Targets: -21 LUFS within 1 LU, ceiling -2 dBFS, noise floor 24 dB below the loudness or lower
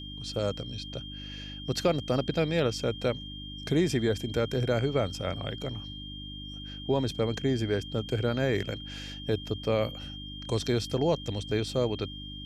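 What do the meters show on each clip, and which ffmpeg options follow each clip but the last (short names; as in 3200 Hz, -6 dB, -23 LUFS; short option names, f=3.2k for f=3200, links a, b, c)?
hum 50 Hz; harmonics up to 300 Hz; hum level -40 dBFS; steady tone 3200 Hz; tone level -42 dBFS; loudness -30.5 LUFS; peak -14.5 dBFS; loudness target -21.0 LUFS
-> -af "bandreject=f=50:t=h:w=4,bandreject=f=100:t=h:w=4,bandreject=f=150:t=h:w=4,bandreject=f=200:t=h:w=4,bandreject=f=250:t=h:w=4,bandreject=f=300:t=h:w=4"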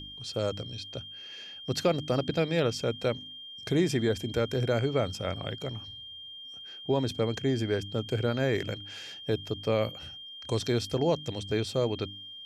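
hum none; steady tone 3200 Hz; tone level -42 dBFS
-> -af "bandreject=f=3.2k:w=30"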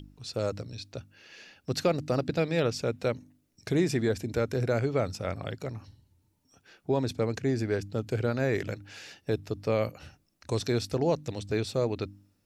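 steady tone none; loudness -30.5 LUFS; peak -15.0 dBFS; loudness target -21.0 LUFS
-> -af "volume=9.5dB"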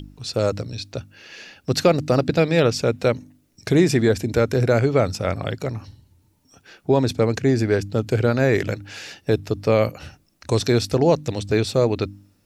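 loudness -21.0 LUFS; peak -5.5 dBFS; noise floor -62 dBFS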